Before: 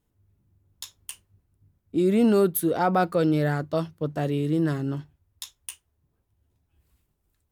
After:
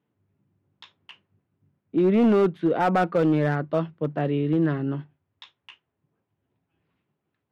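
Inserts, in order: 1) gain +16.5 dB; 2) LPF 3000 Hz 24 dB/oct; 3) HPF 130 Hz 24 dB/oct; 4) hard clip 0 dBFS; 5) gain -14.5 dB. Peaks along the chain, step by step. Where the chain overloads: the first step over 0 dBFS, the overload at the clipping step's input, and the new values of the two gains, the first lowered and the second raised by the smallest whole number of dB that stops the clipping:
+6.0, +6.0, +7.0, 0.0, -14.5 dBFS; step 1, 7.0 dB; step 1 +9.5 dB, step 5 -7.5 dB

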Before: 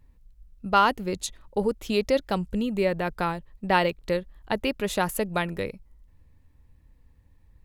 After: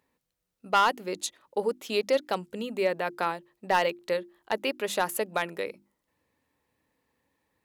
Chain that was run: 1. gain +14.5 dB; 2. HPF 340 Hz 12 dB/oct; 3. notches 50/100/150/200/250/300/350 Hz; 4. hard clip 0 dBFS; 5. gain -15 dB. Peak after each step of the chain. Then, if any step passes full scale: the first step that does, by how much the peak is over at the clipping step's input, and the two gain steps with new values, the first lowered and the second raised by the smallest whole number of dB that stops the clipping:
+7.5, +8.5, +8.5, 0.0, -15.0 dBFS; step 1, 8.5 dB; step 1 +5.5 dB, step 5 -6 dB

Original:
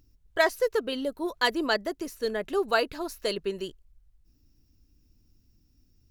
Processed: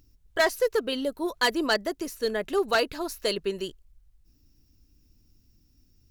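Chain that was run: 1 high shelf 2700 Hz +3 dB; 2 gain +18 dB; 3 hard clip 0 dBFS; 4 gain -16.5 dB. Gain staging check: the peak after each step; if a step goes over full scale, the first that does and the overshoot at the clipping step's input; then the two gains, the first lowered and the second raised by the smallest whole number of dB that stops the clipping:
-9.0, +9.0, 0.0, -16.5 dBFS; step 2, 9.0 dB; step 2 +9 dB, step 4 -7.5 dB

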